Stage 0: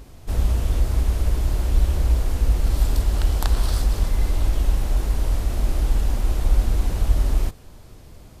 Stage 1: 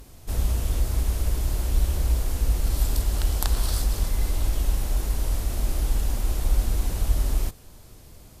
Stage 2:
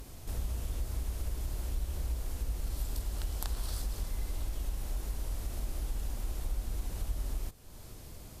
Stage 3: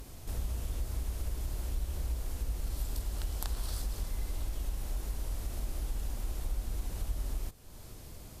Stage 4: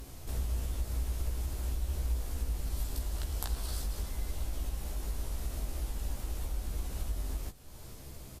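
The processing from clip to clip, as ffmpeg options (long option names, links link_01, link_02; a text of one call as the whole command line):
ffmpeg -i in.wav -af "aemphasis=mode=production:type=cd,volume=-3.5dB" out.wav
ffmpeg -i in.wav -af "acompressor=threshold=-41dB:ratio=2" out.wav
ffmpeg -i in.wav -af anull out.wav
ffmpeg -i in.wav -filter_complex "[0:a]asplit=2[link_01][link_02];[link_02]adelay=15,volume=-5.5dB[link_03];[link_01][link_03]amix=inputs=2:normalize=0" out.wav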